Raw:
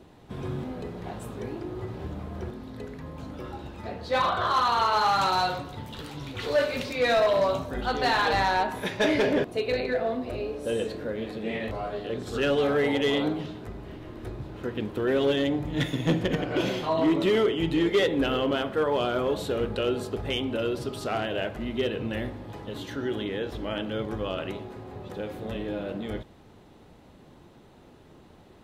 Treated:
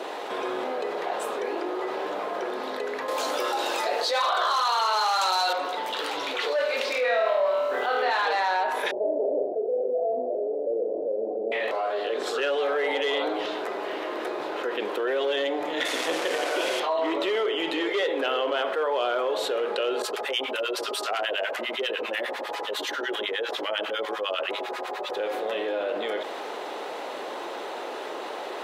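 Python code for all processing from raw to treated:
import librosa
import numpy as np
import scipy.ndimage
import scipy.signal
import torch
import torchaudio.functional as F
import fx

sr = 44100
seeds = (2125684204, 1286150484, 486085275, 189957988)

y = fx.chain(x, sr, fx.bass_treble(bass_db=-7, treble_db=14),
    fx.env_flatten(amount_pct=50), at=(3.08, 5.53))
y = fx.lowpass(y, sr, hz=3300.0, slope=12, at=(6.93, 8.09), fade=0.02)
y = fx.dmg_crackle(y, sr, seeds[0], per_s=530.0, level_db=-43.0, at=(6.93, 8.09), fade=0.02)
y = fx.room_flutter(y, sr, wall_m=4.4, rt60_s=0.65, at=(6.93, 8.09), fade=0.02)
y = fx.chain(y, sr, fx.steep_lowpass(hz=710.0, slope=48),
    fx.room_flutter(wall_m=6.9, rt60_s=0.25), at=(8.91, 11.52))
y = fx.chain(y, sr, fx.delta_mod(bps=64000, step_db=-29.0),
    fx.highpass(hz=140.0, slope=12), at=(15.85, 16.8))
y = fx.chain(y, sr, fx.tilt_eq(slope=2.0),
    fx.harmonic_tremolo(hz=10.0, depth_pct=100, crossover_hz=970.0), at=(20.02, 25.16))
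y = scipy.signal.sosfilt(scipy.signal.butter(4, 450.0, 'highpass', fs=sr, output='sos'), y)
y = fx.high_shelf(y, sr, hz=6100.0, db=-9.5)
y = fx.env_flatten(y, sr, amount_pct=70)
y = y * 10.0 ** (-6.0 / 20.0)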